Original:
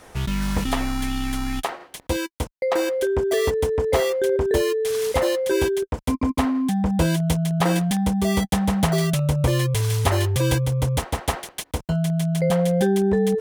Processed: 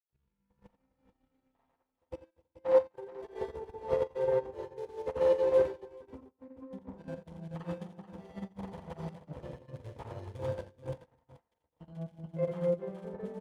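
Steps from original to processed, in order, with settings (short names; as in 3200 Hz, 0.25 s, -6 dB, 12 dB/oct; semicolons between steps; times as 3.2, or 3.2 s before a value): half-wave gain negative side -12 dB; LPF 1300 Hz 6 dB/oct; grains 0.165 s, grains 20/s, pitch spread up and down by 0 st; HPF 85 Hz 6 dB/oct; level quantiser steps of 15 dB; small resonant body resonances 510/890 Hz, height 9 dB, ringing for 55 ms; on a send: tapped delay 44/75/86/257/432/454 ms -10/-19/-6.5/-11.5/-5/-15.5 dB; on the sum: upward expander 2.5:1, over -44 dBFS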